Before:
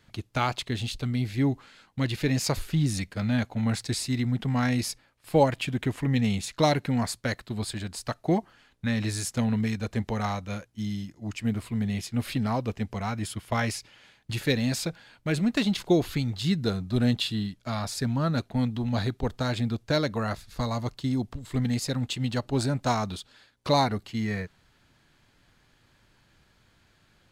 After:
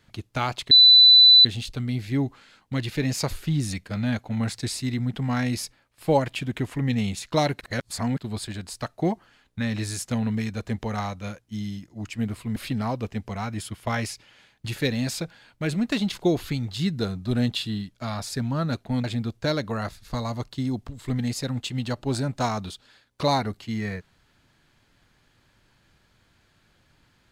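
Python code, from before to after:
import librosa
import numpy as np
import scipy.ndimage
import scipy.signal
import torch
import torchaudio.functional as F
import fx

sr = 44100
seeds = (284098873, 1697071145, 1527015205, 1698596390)

y = fx.edit(x, sr, fx.insert_tone(at_s=0.71, length_s=0.74, hz=3990.0, db=-9.0),
    fx.reverse_span(start_s=6.87, length_s=0.57),
    fx.cut(start_s=11.82, length_s=0.39),
    fx.cut(start_s=18.69, length_s=0.81), tone=tone)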